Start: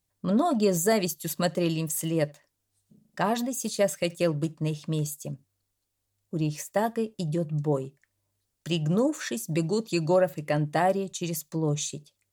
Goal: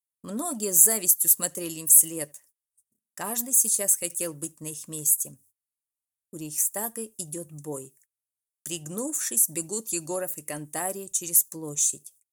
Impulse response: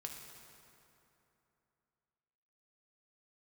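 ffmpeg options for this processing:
-af "aexciter=amount=3.7:drive=9.6:freq=6100,agate=range=-27dB:threshold=-52dB:ratio=16:detection=peak,equalizer=frequency=160:width_type=o:width=0.67:gain=-9,equalizer=frequency=630:width_type=o:width=0.67:gain=-5,equalizer=frequency=10000:width_type=o:width=0.67:gain=8,volume=-6dB"

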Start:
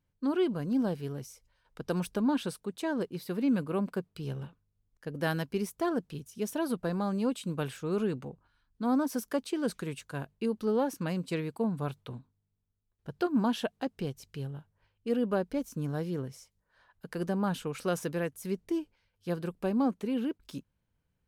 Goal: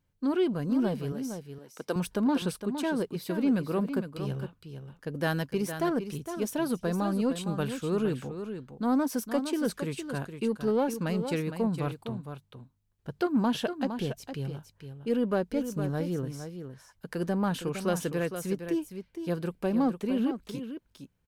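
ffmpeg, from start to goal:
ffmpeg -i in.wav -filter_complex "[0:a]asplit=2[link_01][link_02];[link_02]asoftclip=type=tanh:threshold=-30.5dB,volume=-7dB[link_03];[link_01][link_03]amix=inputs=2:normalize=0,asettb=1/sr,asplit=3[link_04][link_05][link_06];[link_04]atrim=end=1.124[link_07];[link_05]atrim=start=1.12:end=1.96,asetpts=PTS-STARTPTS,afade=type=in:duration=0.004:curve=qsin,afade=type=out:start_time=0.836:duration=0.004:curve=qsin,highpass=280[link_08];[link_06]atrim=start=1.956[link_09];[link_07][link_08]acrossfade=duration=0.004:curve1=hsin:curve2=qsin[link_10];[link_10][link_09]acrossfade=duration=0.004:curve1=qsin:curve2=hsin,aecho=1:1:461:0.355" out.wav

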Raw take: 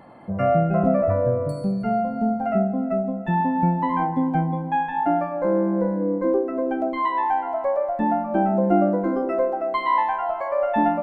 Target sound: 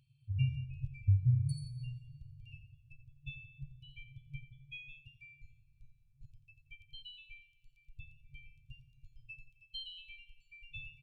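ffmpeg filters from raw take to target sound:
ffmpeg -i in.wav -af "afftdn=noise_reduction=14:noise_floor=-39,afftfilt=real='re*(1-between(b*sr/4096,140,2300))':imag='im*(1-between(b*sr/4096,140,2300))':win_size=4096:overlap=0.75,aecho=1:1:87|174|261|348:0.251|0.108|0.0464|0.02" out.wav

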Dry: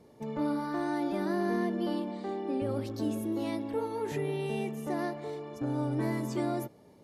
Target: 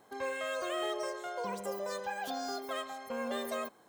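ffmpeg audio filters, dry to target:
ffmpeg -i in.wav -af "tiltshelf=frequency=1100:gain=-4,asetrate=79821,aresample=44100,volume=-2dB" out.wav

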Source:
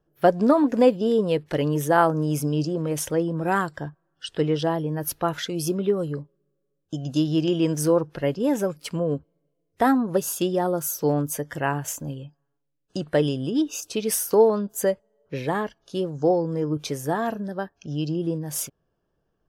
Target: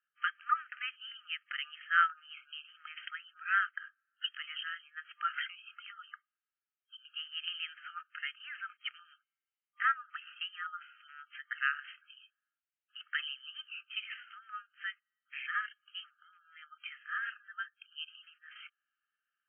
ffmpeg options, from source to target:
ffmpeg -i in.wav -af "afftfilt=real='re*between(b*sr/4096,1200,3200)':imag='im*between(b*sr/4096,1200,3200)':win_size=4096:overlap=0.75" out.wav

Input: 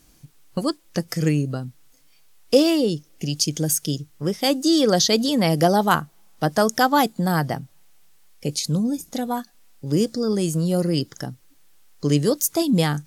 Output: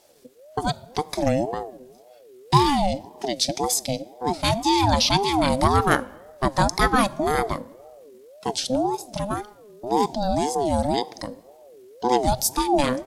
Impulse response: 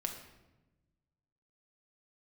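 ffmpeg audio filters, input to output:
-filter_complex "[0:a]asetrate=38170,aresample=44100,atempo=1.15535,asplit=2[link_01][link_02];[1:a]atrim=start_sample=2205[link_03];[link_02][link_03]afir=irnorm=-1:irlink=0,volume=-13dB[link_04];[link_01][link_04]amix=inputs=2:normalize=0,aeval=exprs='val(0)*sin(2*PI*500*n/s+500*0.25/1.9*sin(2*PI*1.9*n/s))':channel_layout=same"

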